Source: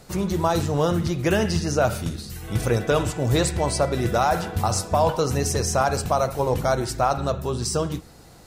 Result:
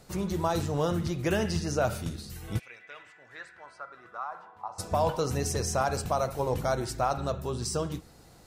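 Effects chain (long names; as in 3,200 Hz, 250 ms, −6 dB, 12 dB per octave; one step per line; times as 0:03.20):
0:02.58–0:04.78: resonant band-pass 2,400 Hz → 910 Hz, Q 5.4
level −6.5 dB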